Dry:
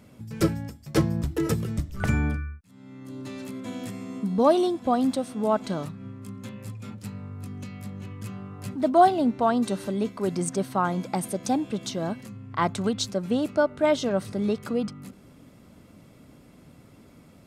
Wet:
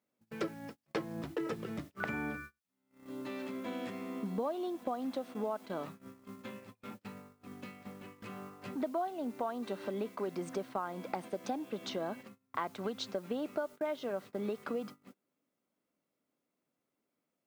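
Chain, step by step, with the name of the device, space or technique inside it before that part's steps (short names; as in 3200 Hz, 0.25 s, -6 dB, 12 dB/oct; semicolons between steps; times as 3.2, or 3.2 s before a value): baby monitor (BPF 320–3000 Hz; compressor 8:1, threshold -33 dBFS, peak gain reduction 20 dB; white noise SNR 25 dB; gate -46 dBFS, range -29 dB)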